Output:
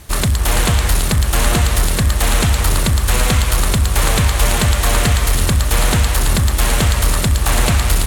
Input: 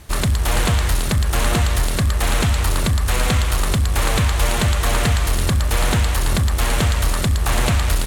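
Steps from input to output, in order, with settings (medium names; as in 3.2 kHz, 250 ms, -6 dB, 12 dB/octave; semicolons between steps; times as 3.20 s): treble shelf 6.2 kHz +5 dB; two-band feedback delay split 2.8 kHz, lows 282 ms, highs 763 ms, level -11.5 dB; trim +2.5 dB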